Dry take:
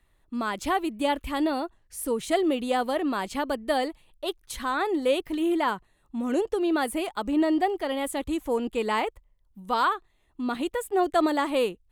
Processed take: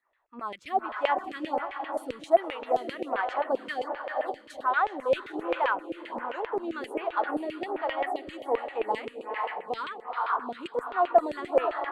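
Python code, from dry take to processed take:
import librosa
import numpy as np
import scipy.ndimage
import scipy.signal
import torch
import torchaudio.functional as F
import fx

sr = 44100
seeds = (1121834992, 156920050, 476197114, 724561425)

y = fx.echo_diffused(x, sr, ms=463, feedback_pct=42, wet_db=-5)
y = fx.filter_lfo_bandpass(y, sr, shape='saw_down', hz=7.6, low_hz=510.0, high_hz=2600.0, q=2.9)
y = fx.stagger_phaser(y, sr, hz=1.3)
y = y * librosa.db_to_amplitude(7.5)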